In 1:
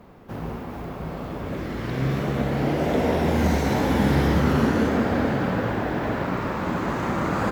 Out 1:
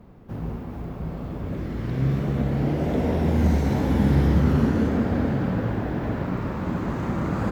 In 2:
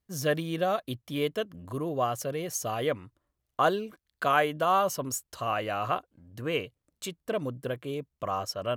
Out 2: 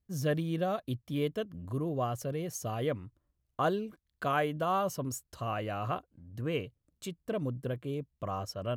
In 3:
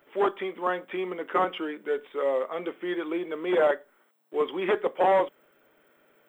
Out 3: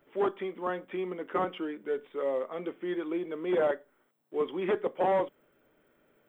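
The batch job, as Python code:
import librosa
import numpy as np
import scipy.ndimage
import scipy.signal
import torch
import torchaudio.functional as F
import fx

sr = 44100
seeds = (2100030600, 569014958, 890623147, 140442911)

y = fx.low_shelf(x, sr, hz=310.0, db=12.0)
y = y * librosa.db_to_amplitude(-7.5)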